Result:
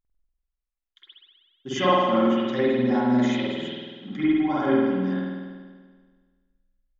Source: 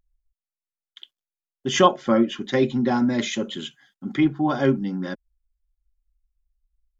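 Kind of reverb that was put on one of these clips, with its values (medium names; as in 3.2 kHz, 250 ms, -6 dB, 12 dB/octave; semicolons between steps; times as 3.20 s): spring tank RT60 1.6 s, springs 48 ms, chirp 35 ms, DRR -10 dB; trim -11.5 dB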